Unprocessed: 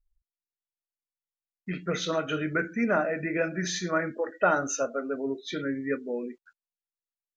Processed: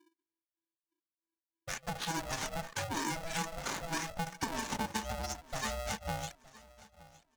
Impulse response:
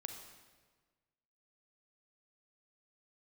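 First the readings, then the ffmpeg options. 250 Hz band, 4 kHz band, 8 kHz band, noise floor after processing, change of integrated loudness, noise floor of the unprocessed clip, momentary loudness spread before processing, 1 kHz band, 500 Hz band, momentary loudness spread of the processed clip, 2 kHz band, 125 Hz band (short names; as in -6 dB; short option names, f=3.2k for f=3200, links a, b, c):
-11.5 dB, -2.0 dB, -2.5 dB, under -85 dBFS, -8.0 dB, under -85 dBFS, 9 LU, -4.5 dB, -14.5 dB, 8 LU, -8.5 dB, -4.5 dB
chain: -filter_complex "[0:a]acrusher=samples=11:mix=1:aa=0.000001:lfo=1:lforange=11:lforate=0.87,acrossover=split=500[a][b];[a]aeval=exprs='val(0)*(1-1/2+1/2*cos(2*PI*3.1*n/s))':c=same[c];[b]aeval=exprs='val(0)*(1-1/2-1/2*cos(2*PI*3.1*n/s))':c=same[d];[c][d]amix=inputs=2:normalize=0,acompressor=threshold=-36dB:ratio=6,asplit=2[e][f];[1:a]atrim=start_sample=2205,atrim=end_sample=3087[g];[f][g]afir=irnorm=-1:irlink=0,volume=-7.5dB[h];[e][h]amix=inputs=2:normalize=0,aresample=22050,aresample=44100,anlmdn=0.01,equalizer=f=125:t=o:w=0.33:g=7,equalizer=f=250:t=o:w=0.33:g=4,equalizer=f=500:t=o:w=0.33:g=7,equalizer=f=1k:t=o:w=0.33:g=-4,equalizer=f=2.5k:t=o:w=0.33:g=-5,equalizer=f=6.3k:t=o:w=0.33:g=11,acrossover=split=440|2100|5600[i][j][k][l];[i]acompressor=threshold=-50dB:ratio=4[m];[j]acompressor=threshold=-40dB:ratio=4[n];[k]acompressor=threshold=-47dB:ratio=4[o];[l]acompressor=threshold=-50dB:ratio=4[p];[m][n][o][p]amix=inputs=4:normalize=0,bandreject=f=50:t=h:w=6,bandreject=f=100:t=h:w=6,bandreject=f=150:t=h:w=6,bandreject=f=200:t=h:w=6,aecho=1:1:3.4:0.33,aecho=1:1:915|1830|2745:0.0944|0.033|0.0116,aeval=exprs='val(0)*sgn(sin(2*PI*330*n/s))':c=same,volume=4dB"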